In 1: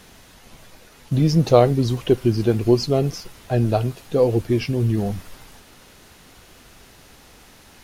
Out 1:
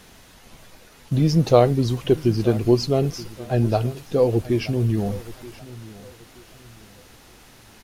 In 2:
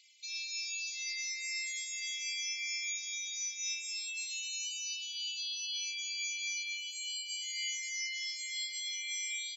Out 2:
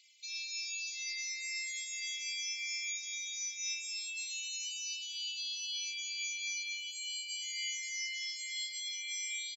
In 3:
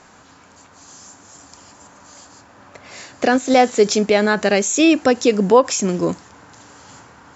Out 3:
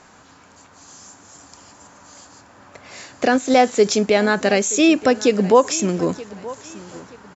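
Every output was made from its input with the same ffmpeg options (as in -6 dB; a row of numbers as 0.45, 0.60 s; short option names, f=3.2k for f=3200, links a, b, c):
-af "aecho=1:1:927|1854|2781:0.119|0.038|0.0122,volume=-1dB"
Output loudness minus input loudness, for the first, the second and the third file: -1.0, -1.0, -1.0 LU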